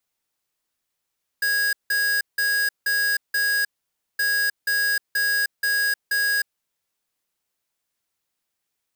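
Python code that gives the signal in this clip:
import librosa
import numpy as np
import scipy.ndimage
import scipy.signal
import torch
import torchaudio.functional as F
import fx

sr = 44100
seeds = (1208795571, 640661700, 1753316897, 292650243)

y = fx.beep_pattern(sr, wave='square', hz=1650.0, on_s=0.31, off_s=0.17, beeps=5, pause_s=0.54, groups=2, level_db=-21.5)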